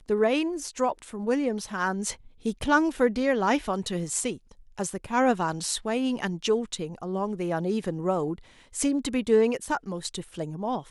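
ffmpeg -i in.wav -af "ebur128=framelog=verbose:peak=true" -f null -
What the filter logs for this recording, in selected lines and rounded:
Integrated loudness:
  I:         -27.4 LUFS
  Threshold: -37.5 LUFS
Loudness range:
  LRA:         2.5 LU
  Threshold: -47.4 LUFS
  LRA low:   -28.9 LUFS
  LRA high:  -26.4 LUFS
True peak:
  Peak:       -9.3 dBFS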